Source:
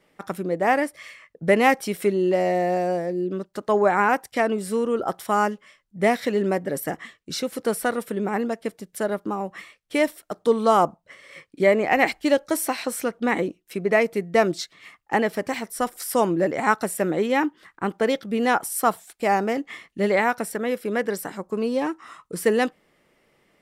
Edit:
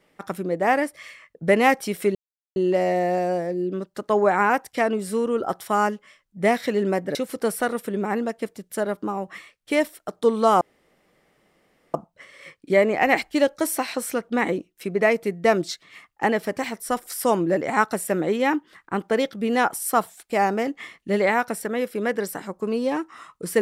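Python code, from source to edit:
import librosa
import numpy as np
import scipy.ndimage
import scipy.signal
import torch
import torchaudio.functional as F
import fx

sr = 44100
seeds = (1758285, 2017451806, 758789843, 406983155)

y = fx.edit(x, sr, fx.insert_silence(at_s=2.15, length_s=0.41),
    fx.cut(start_s=6.74, length_s=0.64),
    fx.insert_room_tone(at_s=10.84, length_s=1.33), tone=tone)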